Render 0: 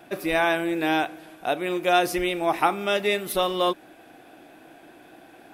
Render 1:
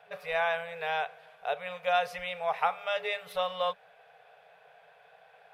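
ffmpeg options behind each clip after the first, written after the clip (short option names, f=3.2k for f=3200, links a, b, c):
-filter_complex "[0:a]afftfilt=real='re*(1-between(b*sr/4096,190,410))':imag='im*(1-between(b*sr/4096,190,410))':win_size=4096:overlap=0.75,acrossover=split=250 4300:gain=0.224 1 0.158[a][b][c];[a][b][c]amix=inputs=3:normalize=0,volume=-6dB"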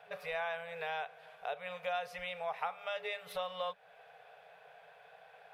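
-af "acompressor=threshold=-41dB:ratio=2"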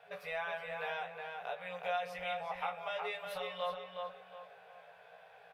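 -filter_complex "[0:a]asplit=2[a][b];[b]adelay=17,volume=-3dB[c];[a][c]amix=inputs=2:normalize=0,asplit=2[d][e];[e]adelay=365,lowpass=f=3.2k:p=1,volume=-4dB,asplit=2[f][g];[g]adelay=365,lowpass=f=3.2k:p=1,volume=0.35,asplit=2[h][i];[i]adelay=365,lowpass=f=3.2k:p=1,volume=0.35,asplit=2[j][k];[k]adelay=365,lowpass=f=3.2k:p=1,volume=0.35[l];[d][f][h][j][l]amix=inputs=5:normalize=0,volume=-3dB"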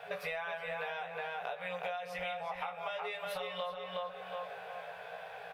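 -af "acompressor=threshold=-47dB:ratio=12,volume=11.5dB"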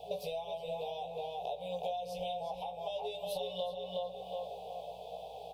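-af "aeval=exprs='val(0)+0.000355*(sin(2*PI*60*n/s)+sin(2*PI*2*60*n/s)/2+sin(2*PI*3*60*n/s)/3+sin(2*PI*4*60*n/s)/4+sin(2*PI*5*60*n/s)/5)':c=same,asuperstop=centerf=1600:order=8:qfactor=0.69,volume=3dB"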